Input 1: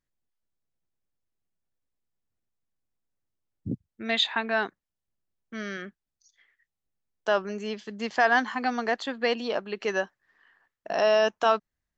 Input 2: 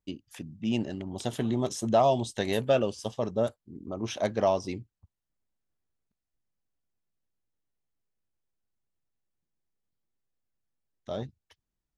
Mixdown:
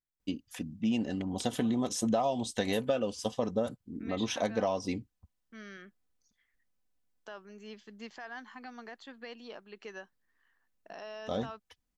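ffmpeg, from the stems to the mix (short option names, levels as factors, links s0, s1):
-filter_complex "[0:a]equalizer=f=590:t=o:w=0.77:g=-4,alimiter=limit=0.0891:level=0:latency=1:release=404,volume=0.251[s0];[1:a]aecho=1:1:4:0.49,adelay=200,volume=1.19[s1];[s0][s1]amix=inputs=2:normalize=0,acompressor=threshold=0.0501:ratio=6"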